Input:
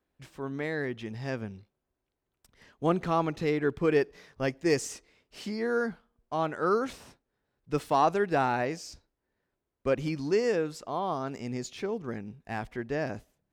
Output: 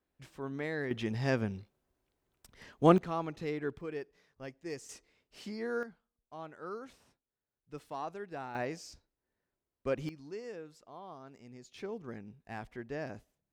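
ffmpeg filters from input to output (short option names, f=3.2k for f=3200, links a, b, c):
-af "asetnsamples=n=441:p=0,asendcmd='0.91 volume volume 3.5dB;2.98 volume volume -8.5dB;3.81 volume volume -15.5dB;4.89 volume volume -7dB;5.83 volume volume -16dB;8.55 volume volume -6dB;10.09 volume volume -17dB;11.74 volume volume -8dB',volume=-4dB"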